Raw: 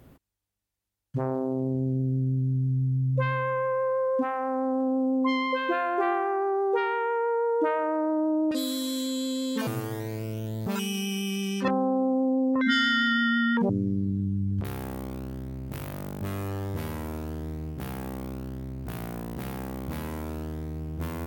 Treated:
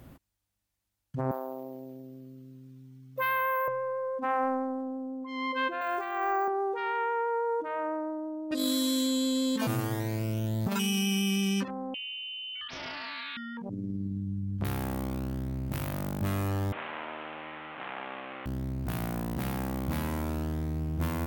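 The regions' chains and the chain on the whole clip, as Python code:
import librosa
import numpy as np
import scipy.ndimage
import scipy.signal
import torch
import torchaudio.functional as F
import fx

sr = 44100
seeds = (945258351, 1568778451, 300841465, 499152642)

y = fx.chain(x, sr, fx.highpass(hz=690.0, slope=12),
    fx.resample_bad(factor=3, down='filtered', up='hold'), at=(1.31, 3.68))
y = fx.chain(y, sr, fx.riaa(side='recording'),
    fx.resample_bad(factor=2, down='filtered', up='hold'), at=(5.81, 6.48))
y = fx.chain(y, sr, fx.freq_invert(carrier_hz=3300),
    fx.doppler_dist(depth_ms=0.67), at=(11.94, 13.37))
y = fx.chain(y, sr, fx.delta_mod(bps=16000, step_db=-32.0),
    fx.highpass(hz=610.0, slope=12), at=(16.72, 18.46))
y = fx.peak_eq(y, sr, hz=430.0, db=-7.5, octaves=0.31)
y = fx.over_compress(y, sr, threshold_db=-30.0, ratio=-0.5)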